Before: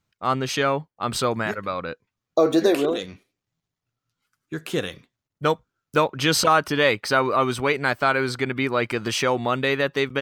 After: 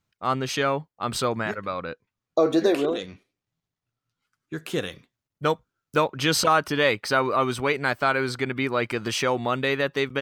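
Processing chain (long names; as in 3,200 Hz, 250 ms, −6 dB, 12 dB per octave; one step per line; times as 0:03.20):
0:01.28–0:04.54: high-shelf EQ 10,000 Hz −10.5 dB
level −2 dB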